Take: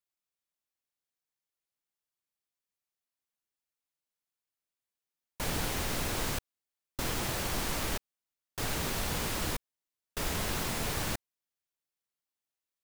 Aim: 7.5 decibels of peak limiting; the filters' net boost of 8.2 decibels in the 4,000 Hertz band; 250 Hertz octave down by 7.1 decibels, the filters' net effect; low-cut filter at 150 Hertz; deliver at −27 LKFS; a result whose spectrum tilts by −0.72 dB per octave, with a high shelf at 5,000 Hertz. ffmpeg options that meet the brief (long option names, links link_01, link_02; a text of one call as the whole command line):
ffmpeg -i in.wav -af "highpass=150,equalizer=frequency=250:width_type=o:gain=-9,equalizer=frequency=4000:width_type=o:gain=7.5,highshelf=frequency=5000:gain=6,volume=5dB,alimiter=limit=-18.5dB:level=0:latency=1" out.wav